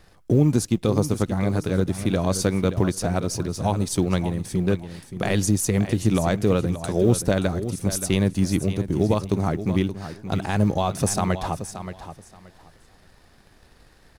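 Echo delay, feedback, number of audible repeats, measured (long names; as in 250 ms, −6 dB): 576 ms, 20%, 2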